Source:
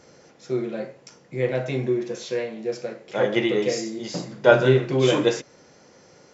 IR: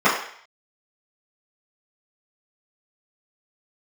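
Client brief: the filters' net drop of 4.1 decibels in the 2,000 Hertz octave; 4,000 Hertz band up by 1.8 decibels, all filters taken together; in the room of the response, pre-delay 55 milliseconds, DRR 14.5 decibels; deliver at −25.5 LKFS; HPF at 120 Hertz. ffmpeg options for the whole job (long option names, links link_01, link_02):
-filter_complex "[0:a]highpass=120,equalizer=frequency=2000:width_type=o:gain=-7,equalizer=frequency=4000:width_type=o:gain=5,asplit=2[link_01][link_02];[1:a]atrim=start_sample=2205,adelay=55[link_03];[link_02][link_03]afir=irnorm=-1:irlink=0,volume=-37.5dB[link_04];[link_01][link_04]amix=inputs=2:normalize=0,volume=-1.5dB"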